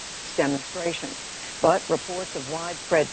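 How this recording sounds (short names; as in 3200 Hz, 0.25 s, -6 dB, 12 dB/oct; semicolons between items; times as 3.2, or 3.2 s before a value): random-step tremolo, depth 90%; a quantiser's noise floor 6-bit, dither triangular; MP2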